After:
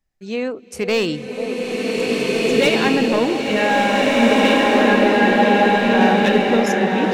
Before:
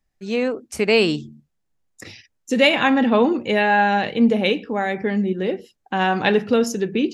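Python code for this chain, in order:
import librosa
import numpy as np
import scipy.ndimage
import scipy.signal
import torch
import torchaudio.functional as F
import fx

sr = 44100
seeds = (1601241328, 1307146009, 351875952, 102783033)

y = np.clip(x, -10.0 ** (-11.5 / 20.0), 10.0 ** (-11.5 / 20.0))
y = fx.echo_stepped(y, sr, ms=489, hz=630.0, octaves=0.7, feedback_pct=70, wet_db=-5.5)
y = fx.rev_bloom(y, sr, seeds[0], attack_ms=1850, drr_db=-5.5)
y = F.gain(torch.from_numpy(y), -2.0).numpy()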